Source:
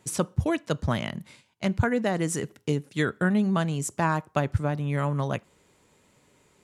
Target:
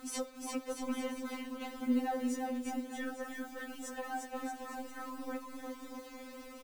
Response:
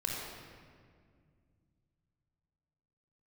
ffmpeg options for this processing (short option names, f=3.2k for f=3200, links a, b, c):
-filter_complex "[0:a]lowpass=f=1.4k:p=1,lowshelf=f=140:g=7.5,bandreject=f=50:t=h:w=6,bandreject=f=100:t=h:w=6,acompressor=threshold=-37dB:ratio=4,alimiter=level_in=12dB:limit=-24dB:level=0:latency=1:release=19,volume=-12dB,acompressor=mode=upward:threshold=-56dB:ratio=2.5,acrusher=bits=10:mix=0:aa=0.000001,aecho=1:1:350|630|854|1033|1177:0.631|0.398|0.251|0.158|0.1,asplit=2[a][b];[1:a]atrim=start_sample=2205[c];[b][c]afir=irnorm=-1:irlink=0,volume=-24.5dB[d];[a][d]amix=inputs=2:normalize=0,afftfilt=real='re*3.46*eq(mod(b,12),0)':imag='im*3.46*eq(mod(b,12),0)':win_size=2048:overlap=0.75,volume=12dB"